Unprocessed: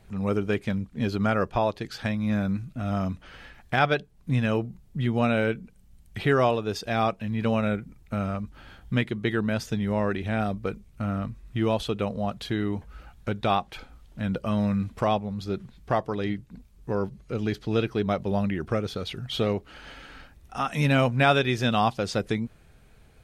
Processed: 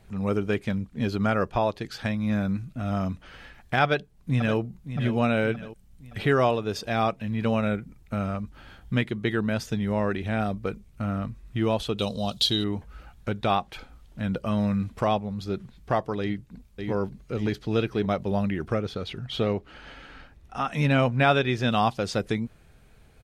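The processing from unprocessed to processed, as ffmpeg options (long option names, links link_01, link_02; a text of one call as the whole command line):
ffmpeg -i in.wav -filter_complex "[0:a]asplit=2[link_01][link_02];[link_02]afade=type=in:start_time=3.83:duration=0.01,afade=type=out:start_time=4.59:duration=0.01,aecho=0:1:570|1140|1710|2280|2850:0.281838|0.140919|0.0704596|0.0352298|0.0176149[link_03];[link_01][link_03]amix=inputs=2:normalize=0,asettb=1/sr,asplit=3[link_04][link_05][link_06];[link_04]atrim=end=11.984[link_07];[link_05]atrim=start=11.98:end=12.64,asetpts=PTS-STARTPTS,afade=type=in:duration=0.004:curve=qsin,afade=type=out:start_time=0.656:duration=0.004:curve=qsin,highshelf=frequency=2700:width_type=q:width=3:gain=11[link_08];[link_06]atrim=start=12.636[link_09];[link_07][link_08]acrossfade=duration=0.004:curve1=hsin:curve2=qsin[link_10];[link_10][link_09]acrossfade=duration=0.004:curve1=qsin:curve2=hsin,asplit=2[link_11][link_12];[link_12]afade=type=in:start_time=16.21:duration=0.01,afade=type=out:start_time=16.91:duration=0.01,aecho=0:1:570|1140|1710|2280|2850|3420:0.562341|0.253054|0.113874|0.0512434|0.0230595|0.0103768[link_13];[link_11][link_13]amix=inputs=2:normalize=0,asettb=1/sr,asplit=3[link_14][link_15][link_16];[link_14]atrim=end=18.744[link_17];[link_15]atrim=start=18.74:end=21.68,asetpts=PTS-STARTPTS,afade=type=in:duration=0.004:curve=qsin,afade=type=out:start_time=2.936:duration=0.004:curve=qsin,highshelf=frequency=7000:gain=-11[link_18];[link_16]atrim=start=21.676[link_19];[link_17][link_18]acrossfade=duration=0.004:curve1=hsin:curve2=qsin[link_20];[link_20][link_19]acrossfade=duration=0.004:curve1=qsin:curve2=hsin" out.wav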